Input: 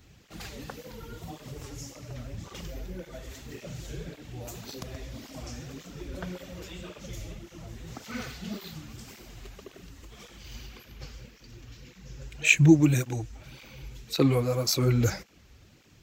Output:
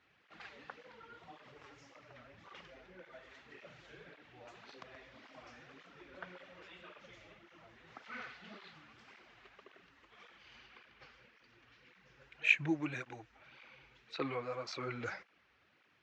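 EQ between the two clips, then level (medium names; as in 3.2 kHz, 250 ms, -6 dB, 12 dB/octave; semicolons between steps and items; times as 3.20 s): band-pass filter 1.6 kHz, Q 0.98; distance through air 150 m; -2.5 dB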